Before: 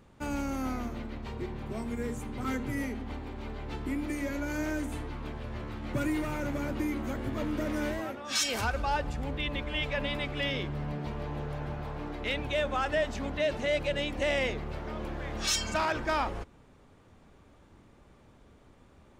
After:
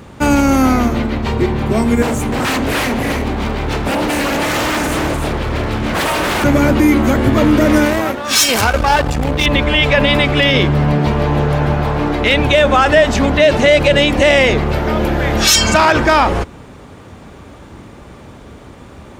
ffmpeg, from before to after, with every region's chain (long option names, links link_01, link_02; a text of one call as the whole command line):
ffmpeg -i in.wav -filter_complex "[0:a]asettb=1/sr,asplit=3[link_01][link_02][link_03];[link_01]atrim=end=2.024[link_04];[link_02]atrim=start=2.02:end=6.44,asetpts=PTS-STARTPTS,afade=type=in:duration=0.004:curve=qsin,afade=type=out:start_time=4.416:duration=0.004:curve=qsin,aecho=1:1:301:0.531,atrim=end_sample=194922,aeval=exprs='0.0211*(abs(mod(val(0)/0.0211+3,4)-2)-1)':channel_layout=same[link_05];[link_03]atrim=start=6.436[link_06];[link_04][link_05]acrossfade=duration=0.004:curve1=hsin:curve2=qsin[link_07];[link_07][link_06]acrossfade=duration=0.004:curve1=qsin:curve2=hsin,asettb=1/sr,asplit=3[link_08][link_09][link_10];[link_08]atrim=end=7.854[link_11];[link_09]atrim=start=7.85:end=9.46,asetpts=PTS-STARTPTS,afade=type=in:duration=0.004:curve=qsin,afade=type=out:start_time=1.606:duration=0.004:curve=qsin,aeval=exprs='if(lt(val(0),0),0.251*val(0),val(0))':channel_layout=same,highshelf=frequency=9500:gain=5[link_12];[link_10]atrim=start=9.456[link_13];[link_11][link_12]acrossfade=duration=0.004:curve1=hsin:curve2=qsin[link_14];[link_14][link_13]acrossfade=duration=0.004:curve1=qsin:curve2=hsin,asettb=1/sr,asplit=3[link_15][link_16][link_17];[link_15]atrim=end=14.734[link_18];[link_16]atrim=start=14.73:end=15.54,asetpts=PTS-STARTPTS,afade=type=in:duration=0.004:curve=qsin,afade=type=out:start_time=0.806:duration=0.004:curve=qsin,equalizer=frequency=13000:width_type=o:width=0.21:gain=12,bandreject=frequency=1100:width=11[link_19];[link_17]atrim=start=15.536[link_20];[link_18][link_19]acrossfade=duration=0.004:curve1=hsin:curve2=qsin[link_21];[link_21][link_20]acrossfade=duration=0.004:curve1=qsin:curve2=hsin,highpass=48,alimiter=level_in=23dB:limit=-1dB:release=50:level=0:latency=1,volume=-1dB" out.wav